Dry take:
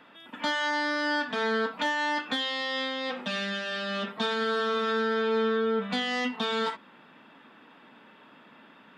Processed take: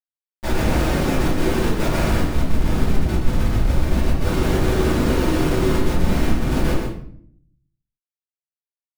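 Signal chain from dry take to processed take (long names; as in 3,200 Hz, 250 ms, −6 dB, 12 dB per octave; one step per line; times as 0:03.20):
reversed piece by piece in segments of 105 ms
low-pass filter 2,300 Hz 24 dB per octave
cochlear-implant simulation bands 8
low-shelf EQ 190 Hz +5.5 dB
low-pass that shuts in the quiet parts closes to 1,100 Hz, open at −23 dBFS
in parallel at +2.5 dB: downward compressor 10 to 1, threshold −38 dBFS, peak gain reduction 17 dB
on the sum: flanger 0.45 Hz, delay 0.1 ms, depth 8.2 ms, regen −7%
comparator with hysteresis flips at −26.5 dBFS
on a send: single-tap delay 124 ms −6.5 dB
on the sum: rectangular room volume 93 cubic metres, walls mixed, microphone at 2.4 metres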